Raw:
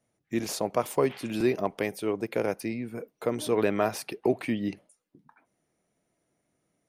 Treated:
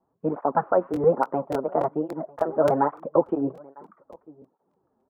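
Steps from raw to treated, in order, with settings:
Butterworth low-pass 1,000 Hz 36 dB per octave
slap from a distant wall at 220 metres, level −24 dB
wrong playback speed 33 rpm record played at 45 rpm
regular buffer underruns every 0.29 s, samples 1,024, repeat, from 0:00.92
through-zero flanger with one copy inverted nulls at 1.2 Hz, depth 7.1 ms
level +8 dB

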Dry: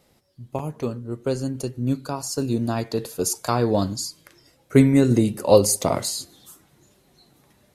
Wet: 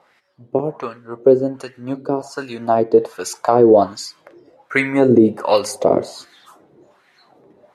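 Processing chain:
LFO wah 1.3 Hz 380–1,900 Hz, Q 2.4
boost into a limiter +17.5 dB
level −1 dB

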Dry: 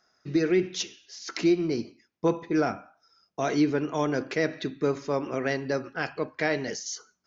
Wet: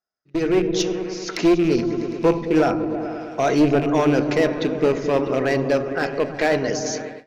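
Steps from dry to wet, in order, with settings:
loose part that buzzes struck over −31 dBFS, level −29 dBFS
asymmetric clip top −21.5 dBFS, bottom −16 dBFS
parametric band 620 Hz +4.5 dB 1.6 octaves
echo whose low-pass opens from repeat to repeat 108 ms, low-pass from 200 Hz, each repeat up 1 octave, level −3 dB
automatic gain control gain up to 9.5 dB
noise gate with hold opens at −24 dBFS
low-shelf EQ 78 Hz +7 dB
level −3.5 dB

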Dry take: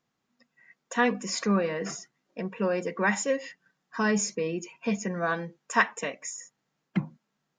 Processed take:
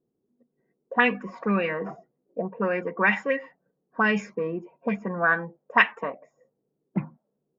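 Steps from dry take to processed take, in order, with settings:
envelope-controlled low-pass 400–2,700 Hz up, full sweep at −21 dBFS

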